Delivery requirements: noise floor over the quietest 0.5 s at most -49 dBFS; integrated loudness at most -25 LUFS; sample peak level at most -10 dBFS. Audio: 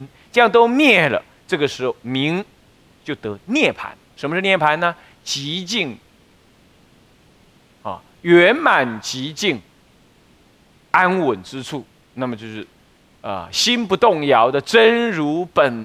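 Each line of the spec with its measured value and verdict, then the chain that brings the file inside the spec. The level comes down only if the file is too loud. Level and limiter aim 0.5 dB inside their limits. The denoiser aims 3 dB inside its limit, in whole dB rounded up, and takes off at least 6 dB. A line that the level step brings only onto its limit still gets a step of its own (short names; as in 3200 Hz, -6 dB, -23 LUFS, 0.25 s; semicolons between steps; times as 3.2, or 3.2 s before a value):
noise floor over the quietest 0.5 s -53 dBFS: OK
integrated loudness -17.0 LUFS: fail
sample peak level -1.5 dBFS: fail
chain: gain -8.5 dB; limiter -10.5 dBFS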